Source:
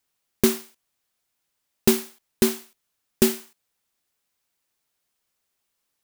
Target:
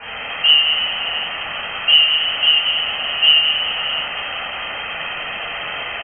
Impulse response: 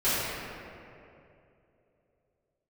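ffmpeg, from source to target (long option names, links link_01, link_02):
-filter_complex "[0:a]aeval=exprs='val(0)+0.5*0.119*sgn(val(0))':channel_layout=same,acrossover=split=190|1100[link_01][link_02][link_03];[link_03]alimiter=limit=-18.5dB:level=0:latency=1:release=448[link_04];[link_01][link_02][link_04]amix=inputs=3:normalize=0,aecho=1:1:1.6:0.37[link_05];[1:a]atrim=start_sample=2205[link_06];[link_05][link_06]afir=irnorm=-1:irlink=0,lowpass=frequency=2700:width_type=q:width=0.5098,lowpass=frequency=2700:width_type=q:width=0.6013,lowpass=frequency=2700:width_type=q:width=0.9,lowpass=frequency=2700:width_type=q:width=2.563,afreqshift=-3200,volume=-7.5dB"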